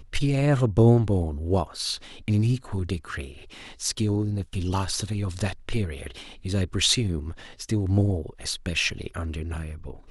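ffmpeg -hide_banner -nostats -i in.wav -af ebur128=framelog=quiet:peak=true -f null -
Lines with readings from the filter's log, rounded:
Integrated loudness:
  I:         -25.8 LUFS
  Threshold: -36.2 LUFS
Loudness range:
  LRA:         4.9 LU
  Threshold: -46.9 LUFS
  LRA low:   -29.1 LUFS
  LRA high:  -24.2 LUFS
True peak:
  Peak:       -7.5 dBFS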